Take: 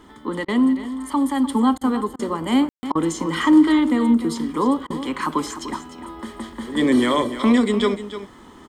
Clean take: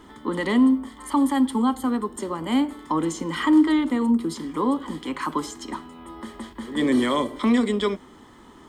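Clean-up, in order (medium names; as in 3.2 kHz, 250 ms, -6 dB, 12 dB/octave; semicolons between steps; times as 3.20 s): room tone fill 2.69–2.83 s; interpolate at 0.45/1.78/2.16/2.92/4.87 s, 31 ms; inverse comb 300 ms -12 dB; trim 0 dB, from 1.49 s -3.5 dB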